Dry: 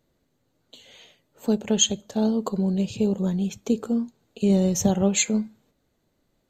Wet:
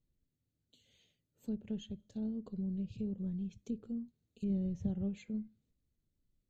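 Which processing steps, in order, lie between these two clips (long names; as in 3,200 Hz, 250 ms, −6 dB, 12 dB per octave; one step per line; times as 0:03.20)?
treble cut that deepens with the level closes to 1,900 Hz, closed at −20 dBFS
guitar amp tone stack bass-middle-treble 10-0-1
level +2 dB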